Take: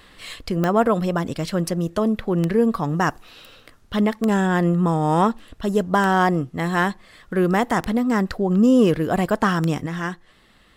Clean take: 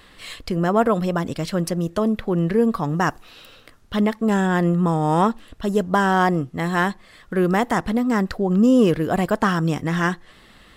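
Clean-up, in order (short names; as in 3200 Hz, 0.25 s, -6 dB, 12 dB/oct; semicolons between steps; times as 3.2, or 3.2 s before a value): de-click; gain correction +6 dB, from 9.86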